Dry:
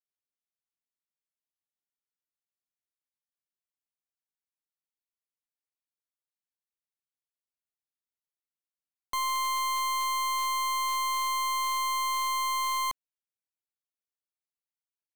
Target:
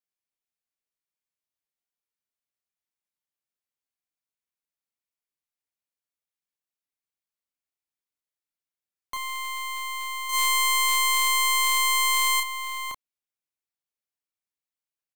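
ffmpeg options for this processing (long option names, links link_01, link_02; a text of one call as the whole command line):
ffmpeg -i in.wav -filter_complex "[0:a]asettb=1/sr,asplit=3[link_01][link_02][link_03];[link_01]atrim=end=10.294[link_04];[link_02]atrim=start=10.29:end=12.4,asetpts=PTS-STARTPTS,afade=type=in:duration=0.004:curve=qsin,afade=type=out:start_time=2.106:duration=0.004:curve=qsin,equalizer=frequency=10000:width_type=o:width=2.7:gain=7.5[link_05];[link_03]atrim=start=12.396[link_06];[link_04][link_05]acrossfade=duration=0.004:curve1=hsin:curve2=qsin[link_07];[link_07][link_06]acrossfade=duration=0.004:curve1=qsin:curve2=hsin,agate=range=-10dB:threshold=-26dB:ratio=16:detection=peak,equalizer=frequency=2300:width_type=o:width=0.34:gain=3,asplit=2[link_08][link_09];[link_09]adelay=32,volume=-4.5dB[link_10];[link_08][link_10]amix=inputs=2:normalize=0,volume=8.5dB" out.wav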